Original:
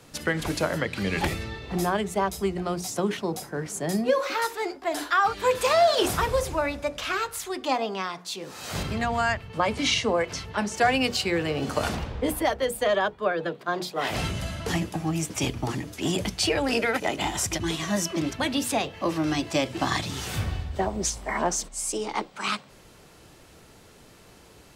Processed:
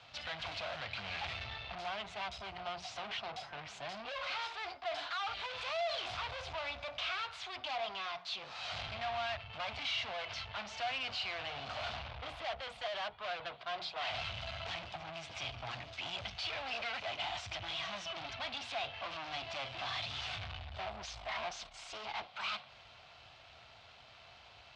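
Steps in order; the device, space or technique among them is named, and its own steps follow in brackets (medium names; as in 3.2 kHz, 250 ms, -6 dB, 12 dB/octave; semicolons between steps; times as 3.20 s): scooped metal amplifier (valve stage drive 37 dB, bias 0.6; cabinet simulation 93–3800 Hz, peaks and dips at 170 Hz -7 dB, 280 Hz +5 dB, 450 Hz -5 dB, 690 Hz +10 dB, 1.8 kHz -6 dB; amplifier tone stack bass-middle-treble 10-0-10); trim +8 dB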